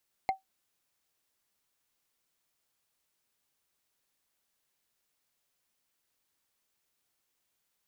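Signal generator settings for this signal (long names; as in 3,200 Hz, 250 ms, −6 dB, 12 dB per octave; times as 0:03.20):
struck wood, lowest mode 768 Hz, decay 0.14 s, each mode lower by 8 dB, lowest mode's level −20.5 dB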